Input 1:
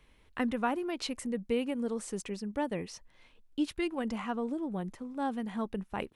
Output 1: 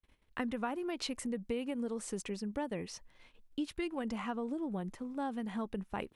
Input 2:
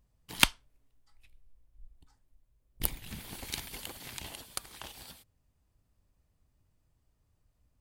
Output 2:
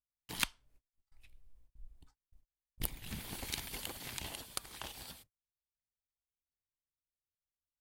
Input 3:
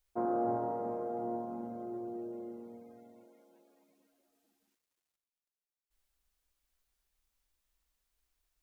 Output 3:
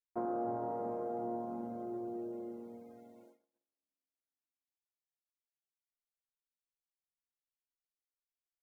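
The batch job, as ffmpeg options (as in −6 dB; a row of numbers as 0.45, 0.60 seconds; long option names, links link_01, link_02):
-af "agate=range=-35dB:threshold=-60dB:ratio=16:detection=peak,acompressor=threshold=-34dB:ratio=3"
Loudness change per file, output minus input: −4.0, −7.5, −2.5 LU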